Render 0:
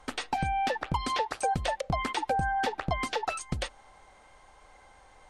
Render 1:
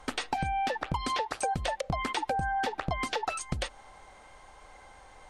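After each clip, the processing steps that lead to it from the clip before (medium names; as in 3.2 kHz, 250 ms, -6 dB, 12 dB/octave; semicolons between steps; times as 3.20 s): compression 3:1, threshold -32 dBFS, peak gain reduction 7 dB; trim +3.5 dB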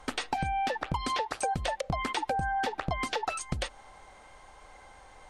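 no audible change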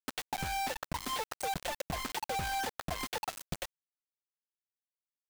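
bit crusher 5-bit; trim -6.5 dB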